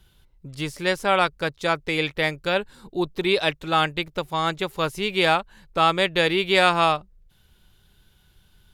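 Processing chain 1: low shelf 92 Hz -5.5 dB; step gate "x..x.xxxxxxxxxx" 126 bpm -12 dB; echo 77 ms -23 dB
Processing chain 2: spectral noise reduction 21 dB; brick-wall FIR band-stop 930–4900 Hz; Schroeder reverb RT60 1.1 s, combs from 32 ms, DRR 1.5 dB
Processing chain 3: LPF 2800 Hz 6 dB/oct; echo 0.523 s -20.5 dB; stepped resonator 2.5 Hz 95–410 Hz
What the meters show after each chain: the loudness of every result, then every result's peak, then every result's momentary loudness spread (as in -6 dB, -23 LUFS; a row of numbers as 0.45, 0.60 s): -23.5, -24.0, -34.5 LUFS; -4.5, -8.5, -13.0 dBFS; 11, 8, 19 LU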